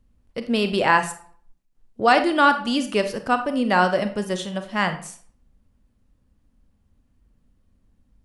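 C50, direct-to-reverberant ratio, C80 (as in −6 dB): 11.0 dB, 8.0 dB, 15.0 dB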